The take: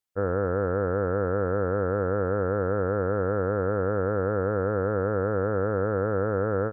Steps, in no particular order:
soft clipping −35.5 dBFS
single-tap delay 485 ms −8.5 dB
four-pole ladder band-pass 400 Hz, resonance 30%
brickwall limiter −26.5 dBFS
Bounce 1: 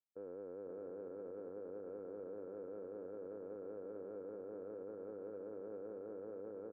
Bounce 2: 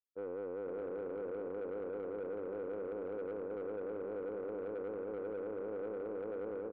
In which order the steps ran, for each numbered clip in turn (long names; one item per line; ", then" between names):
single-tap delay, then brickwall limiter, then four-pole ladder band-pass, then soft clipping
four-pole ladder band-pass, then brickwall limiter, then single-tap delay, then soft clipping